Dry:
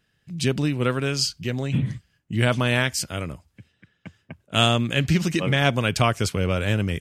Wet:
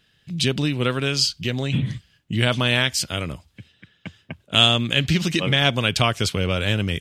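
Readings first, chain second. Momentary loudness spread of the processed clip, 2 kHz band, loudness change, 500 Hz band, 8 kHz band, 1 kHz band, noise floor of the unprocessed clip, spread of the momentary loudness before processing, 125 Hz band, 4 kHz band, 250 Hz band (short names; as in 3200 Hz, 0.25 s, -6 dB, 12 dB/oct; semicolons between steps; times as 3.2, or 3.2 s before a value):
13 LU, +2.5 dB, +2.5 dB, 0.0 dB, +1.5 dB, 0.0 dB, -71 dBFS, 10 LU, 0.0 dB, +7.0 dB, 0.0 dB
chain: bell 3500 Hz +9 dB 0.87 oct; in parallel at +2.5 dB: compressor, threshold -28 dBFS, peak gain reduction 18 dB; on the sum: gain -3 dB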